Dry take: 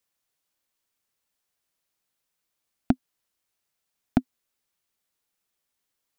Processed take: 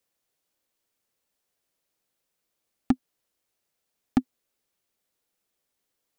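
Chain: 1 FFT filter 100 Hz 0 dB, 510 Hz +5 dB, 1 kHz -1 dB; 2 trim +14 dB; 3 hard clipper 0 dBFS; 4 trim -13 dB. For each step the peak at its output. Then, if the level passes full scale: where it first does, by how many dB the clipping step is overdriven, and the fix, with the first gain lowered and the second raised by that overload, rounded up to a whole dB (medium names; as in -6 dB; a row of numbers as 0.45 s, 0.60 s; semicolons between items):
-4.5 dBFS, +9.5 dBFS, 0.0 dBFS, -13.0 dBFS; step 2, 9.5 dB; step 2 +4 dB, step 4 -3 dB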